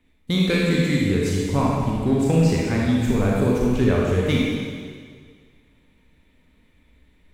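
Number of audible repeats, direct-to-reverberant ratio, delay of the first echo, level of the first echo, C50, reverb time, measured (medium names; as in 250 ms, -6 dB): no echo, -4.5 dB, no echo, no echo, -2.5 dB, 1.9 s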